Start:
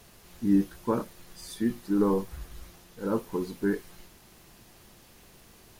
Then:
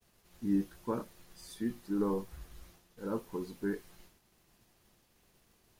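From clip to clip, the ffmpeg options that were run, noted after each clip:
ffmpeg -i in.wav -af "agate=range=-33dB:threshold=-48dB:ratio=3:detection=peak,volume=-7.5dB" out.wav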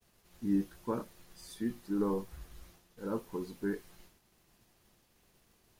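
ffmpeg -i in.wav -af anull out.wav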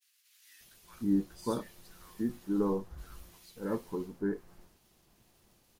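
ffmpeg -i in.wav -filter_complex "[0:a]acrossover=split=1800[link_01][link_02];[link_01]adelay=590[link_03];[link_03][link_02]amix=inputs=2:normalize=0,volume=2dB" out.wav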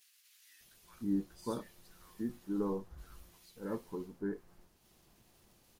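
ffmpeg -i in.wav -af "acompressor=mode=upward:threshold=-53dB:ratio=2.5,volume=-5dB" out.wav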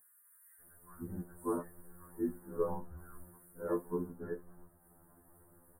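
ffmpeg -i in.wav -af "asuperstop=centerf=4000:order=12:qfactor=0.56,afftfilt=real='re*2*eq(mod(b,4),0)':imag='im*2*eq(mod(b,4),0)':win_size=2048:overlap=0.75,volume=7dB" out.wav

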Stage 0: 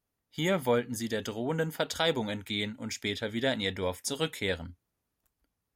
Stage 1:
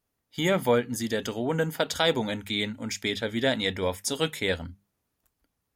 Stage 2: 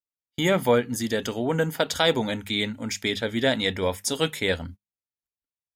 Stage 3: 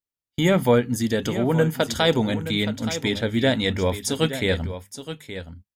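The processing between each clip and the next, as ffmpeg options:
ffmpeg -i in.wav -af "bandreject=frequency=50:width_type=h:width=6,bandreject=frequency=100:width_type=h:width=6,bandreject=frequency=150:width_type=h:width=6,bandreject=frequency=200:width_type=h:width=6,volume=4dB" out.wav
ffmpeg -i in.wav -af "agate=range=-31dB:threshold=-42dB:ratio=16:detection=peak,volume=2.5dB" out.wav
ffmpeg -i in.wav -af "lowshelf=frequency=250:gain=9,aecho=1:1:872:0.266" out.wav

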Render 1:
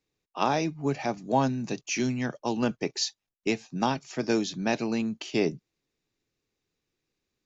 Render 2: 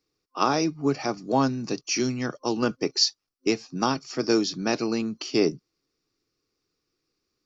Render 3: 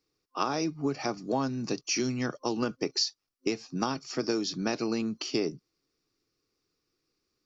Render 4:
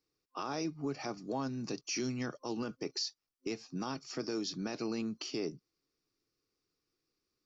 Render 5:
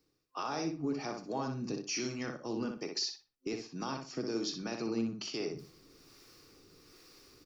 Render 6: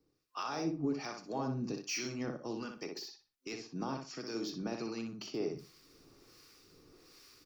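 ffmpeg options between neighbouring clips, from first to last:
ffmpeg -i in.wav -af "superequalizer=6b=1.78:7b=1.58:10b=2.24:14b=2.82" out.wav
ffmpeg -i in.wav -af "acompressor=threshold=-24dB:ratio=6,volume=-1dB" out.wav
ffmpeg -i in.wav -af "alimiter=limit=-21.5dB:level=0:latency=1:release=13,volume=-5.5dB" out.wav
ffmpeg -i in.wav -filter_complex "[0:a]areverse,acompressor=mode=upward:threshold=-39dB:ratio=2.5,areverse,acrossover=split=510[link_01][link_02];[link_01]aeval=exprs='val(0)*(1-0.5/2+0.5/2*cos(2*PI*1.2*n/s))':channel_layout=same[link_03];[link_02]aeval=exprs='val(0)*(1-0.5/2-0.5/2*cos(2*PI*1.2*n/s))':channel_layout=same[link_04];[link_03][link_04]amix=inputs=2:normalize=0,asplit=2[link_05][link_06];[link_06]adelay=61,lowpass=frequency=3700:poles=1,volume=-4.5dB,asplit=2[link_07][link_08];[link_08]adelay=61,lowpass=frequency=3700:poles=1,volume=0.29,asplit=2[link_09][link_10];[link_10]adelay=61,lowpass=frequency=3700:poles=1,volume=0.29,asplit=2[link_11][link_12];[link_12]adelay=61,lowpass=frequency=3700:poles=1,volume=0.29[link_13];[link_05][link_07][link_09][link_11][link_13]amix=inputs=5:normalize=0,volume=2dB" out.wav
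ffmpeg -i in.wav -filter_complex "[0:a]acrossover=split=3500[link_01][link_02];[link_02]asoftclip=type=tanh:threshold=-38dB[link_03];[link_01][link_03]amix=inputs=2:normalize=0,acrossover=split=1000[link_04][link_05];[link_04]aeval=exprs='val(0)*(1-0.7/2+0.7/2*cos(2*PI*1.3*n/s))':channel_layout=same[link_06];[link_05]aeval=exprs='val(0)*(1-0.7/2-0.7/2*cos(2*PI*1.3*n/s))':channel_layout=same[link_07];[link_06][link_07]amix=inputs=2:normalize=0,volume=2dB" out.wav

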